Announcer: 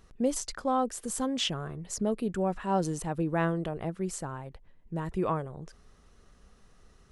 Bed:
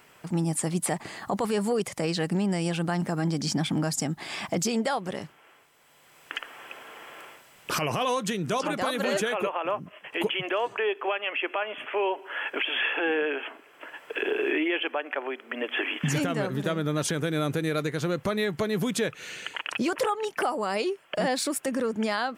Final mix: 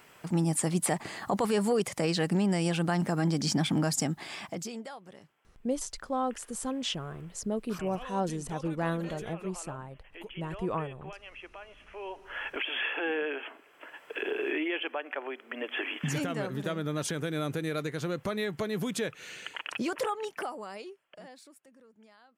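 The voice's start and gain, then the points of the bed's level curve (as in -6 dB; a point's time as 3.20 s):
5.45 s, -3.0 dB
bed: 4.05 s -0.5 dB
4.99 s -17.5 dB
11.92 s -17.5 dB
12.35 s -5 dB
20.21 s -5 dB
21.73 s -31 dB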